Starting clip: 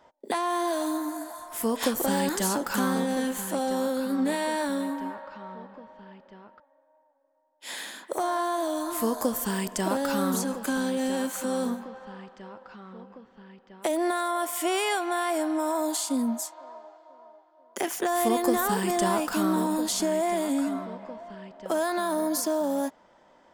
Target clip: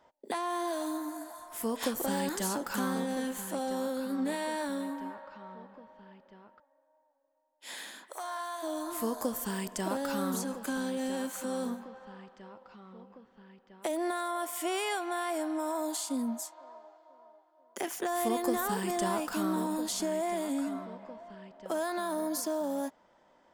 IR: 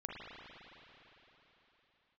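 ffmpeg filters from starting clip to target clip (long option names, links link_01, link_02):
-filter_complex "[0:a]asplit=3[link_01][link_02][link_03];[link_01]afade=type=out:start_time=8.08:duration=0.02[link_04];[link_02]highpass=930,afade=type=in:start_time=8.08:duration=0.02,afade=type=out:start_time=8.62:duration=0.02[link_05];[link_03]afade=type=in:start_time=8.62:duration=0.02[link_06];[link_04][link_05][link_06]amix=inputs=3:normalize=0,asettb=1/sr,asplit=3[link_07][link_08][link_09];[link_07]atrim=end=12.544[link_10];[link_08]atrim=start=12.54:end=13.13,asetpts=PTS-STARTPTS,afade=type=in:duration=0.004:curve=qsin,afade=type=out:start_time=0.586:duration=0.004:curve=qsin,equalizer=frequency=1600:width_type=o:width=0.27:gain=-7.5[link_11];[link_09]atrim=start=13.126[link_12];[link_10][link_11]acrossfade=duration=0.004:curve1=hsin:curve2=qsin[link_13];[link_13][link_12]acrossfade=duration=0.004:curve1=qsin:curve2=hsin,volume=-6dB"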